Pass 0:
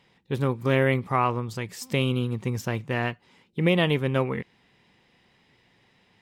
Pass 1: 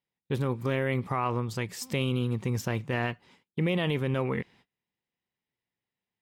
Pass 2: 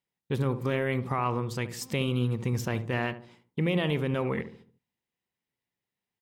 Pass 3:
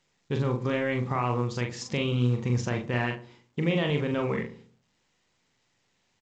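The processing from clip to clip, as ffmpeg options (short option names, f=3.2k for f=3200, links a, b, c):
-af "agate=range=-29dB:threshold=-55dB:ratio=16:detection=peak,alimiter=limit=-19dB:level=0:latency=1:release=38"
-filter_complex "[0:a]asplit=2[a][b];[b]adelay=72,lowpass=f=820:p=1,volume=-9.5dB,asplit=2[c][d];[d]adelay=72,lowpass=f=820:p=1,volume=0.46,asplit=2[e][f];[f]adelay=72,lowpass=f=820:p=1,volume=0.46,asplit=2[g][h];[h]adelay=72,lowpass=f=820:p=1,volume=0.46,asplit=2[i][j];[j]adelay=72,lowpass=f=820:p=1,volume=0.46[k];[a][c][e][g][i][k]amix=inputs=6:normalize=0"
-filter_complex "[0:a]asplit=2[a][b];[b]adelay=41,volume=-4.5dB[c];[a][c]amix=inputs=2:normalize=0" -ar 16000 -c:a pcm_alaw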